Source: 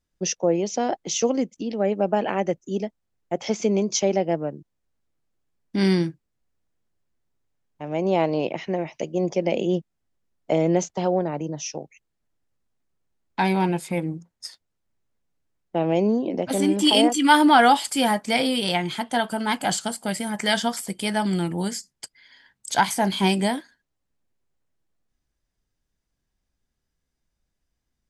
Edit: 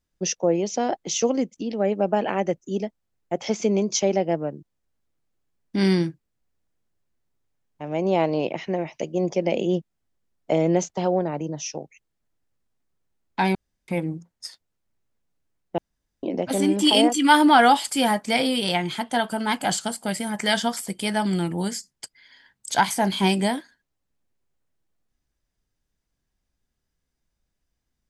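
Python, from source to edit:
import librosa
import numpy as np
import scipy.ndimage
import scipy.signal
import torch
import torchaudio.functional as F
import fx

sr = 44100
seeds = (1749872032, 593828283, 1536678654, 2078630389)

y = fx.edit(x, sr, fx.room_tone_fill(start_s=13.55, length_s=0.33),
    fx.room_tone_fill(start_s=15.78, length_s=0.45), tone=tone)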